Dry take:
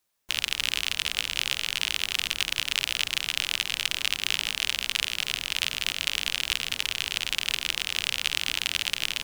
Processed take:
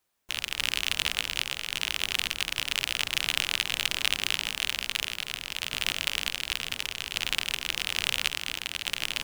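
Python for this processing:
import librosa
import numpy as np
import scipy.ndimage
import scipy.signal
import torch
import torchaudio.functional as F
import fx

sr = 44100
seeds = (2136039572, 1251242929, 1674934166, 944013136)

p1 = fx.sample_hold(x, sr, seeds[0], rate_hz=7100.0, jitter_pct=20)
p2 = x + (p1 * 10.0 ** (-8.5 / 20.0))
y = fx.tremolo_random(p2, sr, seeds[1], hz=3.5, depth_pct=55)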